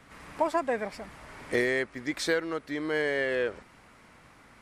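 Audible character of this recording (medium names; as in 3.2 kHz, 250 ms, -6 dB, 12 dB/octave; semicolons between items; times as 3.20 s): noise floor -56 dBFS; spectral tilt -4.0 dB/octave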